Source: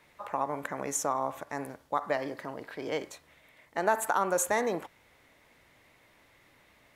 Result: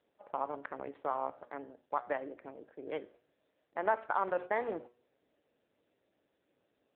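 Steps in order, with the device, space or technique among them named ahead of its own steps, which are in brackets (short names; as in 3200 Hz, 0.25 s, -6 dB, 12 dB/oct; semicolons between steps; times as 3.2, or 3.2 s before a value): Wiener smoothing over 41 samples; 0.83–2.82 low shelf 89 Hz -5 dB; de-hum 121.3 Hz, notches 32; dynamic EQ 4900 Hz, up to +3 dB, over -51 dBFS, Q 1.4; telephone (BPF 290–3300 Hz; gain -2.5 dB; AMR-NB 6.7 kbps 8000 Hz)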